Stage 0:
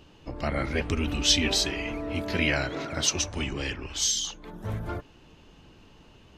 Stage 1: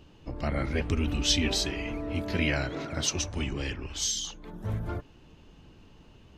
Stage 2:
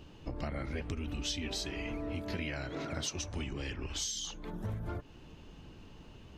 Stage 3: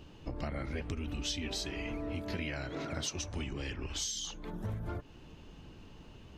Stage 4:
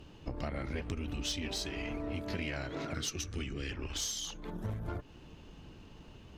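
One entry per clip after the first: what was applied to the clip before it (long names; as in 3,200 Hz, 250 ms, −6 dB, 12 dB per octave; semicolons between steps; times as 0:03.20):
low-shelf EQ 330 Hz +5.5 dB; level −4 dB
downward compressor 6 to 1, threshold −36 dBFS, peak gain reduction 15 dB; level +1.5 dB
no processing that can be heard
gain on a spectral selection 0:02.94–0:03.71, 500–1,100 Hz −14 dB; harmonic generator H 6 −24 dB, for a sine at −21.5 dBFS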